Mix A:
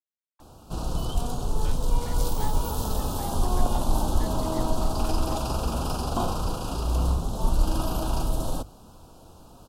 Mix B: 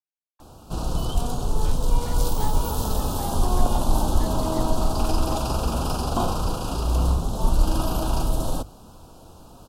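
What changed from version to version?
background +3.0 dB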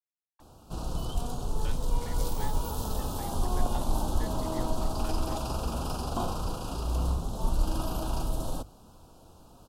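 background -7.5 dB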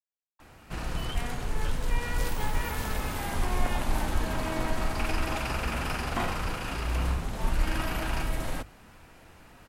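background: remove Butterworth band-stop 2000 Hz, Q 0.82

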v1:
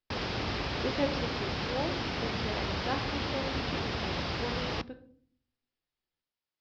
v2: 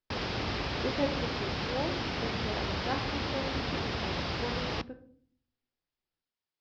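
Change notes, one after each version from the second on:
speech: add LPF 1900 Hz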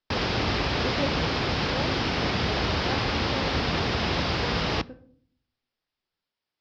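background +7.5 dB

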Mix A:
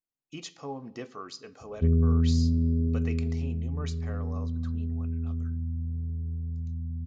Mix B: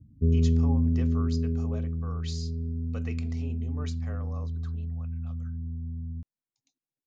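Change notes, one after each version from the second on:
speech: send -11.5 dB; background: entry -1.60 s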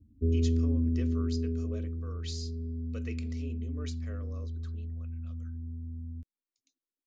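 master: add fixed phaser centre 350 Hz, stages 4

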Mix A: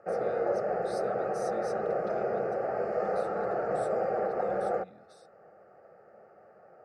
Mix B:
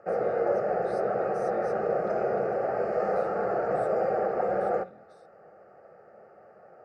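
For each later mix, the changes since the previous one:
speech: add high shelf 2100 Hz -10 dB; reverb: on, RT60 0.30 s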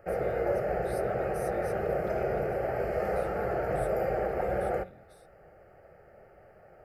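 master: remove speaker cabinet 180–7000 Hz, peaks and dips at 210 Hz +5 dB, 480 Hz +4 dB, 750 Hz +4 dB, 1200 Hz +7 dB, 2200 Hz -6 dB, 3200 Hz -9 dB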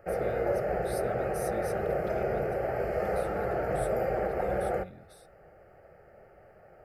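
speech +6.0 dB

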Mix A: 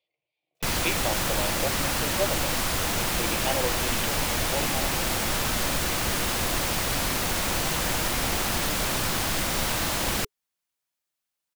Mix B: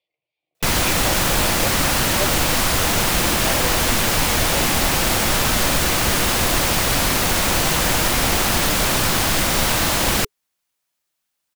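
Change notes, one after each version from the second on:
background +8.0 dB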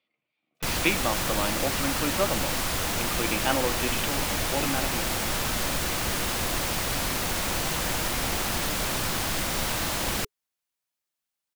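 speech: remove fixed phaser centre 570 Hz, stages 4; background -9.5 dB

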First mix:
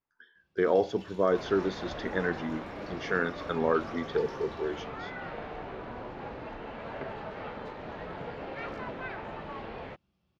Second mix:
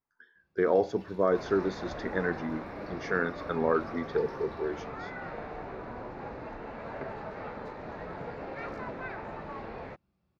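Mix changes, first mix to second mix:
first sound: add bell 6900 Hz -12 dB 0.59 oct; master: add bell 3100 Hz -10.5 dB 0.42 oct

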